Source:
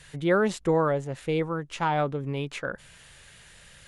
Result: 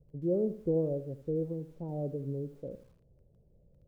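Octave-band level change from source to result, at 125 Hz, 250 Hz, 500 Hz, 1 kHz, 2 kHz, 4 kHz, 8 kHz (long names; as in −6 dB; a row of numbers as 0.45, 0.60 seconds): −5.0 dB, −5.0 dB, −6.5 dB, −25.5 dB, below −40 dB, below −35 dB, below −25 dB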